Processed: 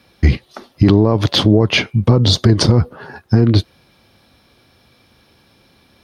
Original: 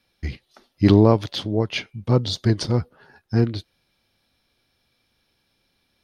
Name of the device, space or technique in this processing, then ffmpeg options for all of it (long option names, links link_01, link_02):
mastering chain: -af "highpass=55,equalizer=frequency=1100:width_type=o:width=0.26:gain=3.5,acompressor=threshold=-18dB:ratio=3,tiltshelf=frequency=1400:gain=3.5,alimiter=level_in=17dB:limit=-1dB:release=50:level=0:latency=1,volume=-1dB"